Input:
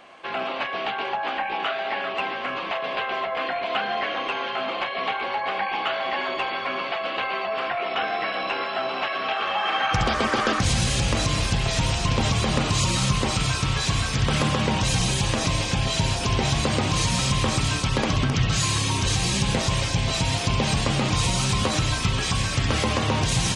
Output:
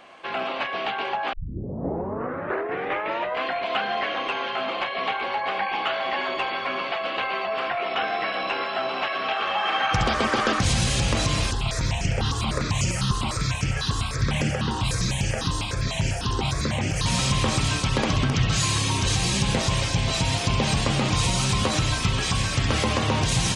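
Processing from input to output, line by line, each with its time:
1.33 s: tape start 2.11 s
11.51–17.06 s: stepped phaser 10 Hz 620–3800 Hz

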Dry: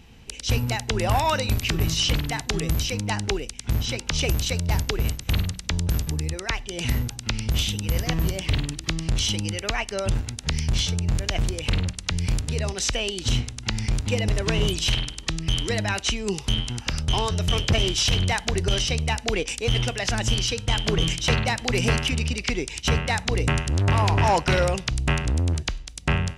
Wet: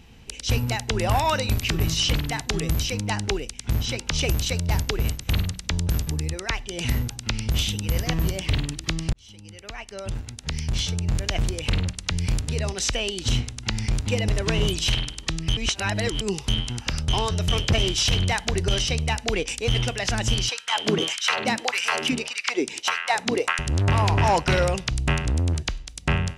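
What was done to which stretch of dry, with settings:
9.13–11.25 s: fade in
15.57–16.21 s: reverse
20.49–23.59 s: LFO high-pass sine 1.7 Hz 220–1600 Hz

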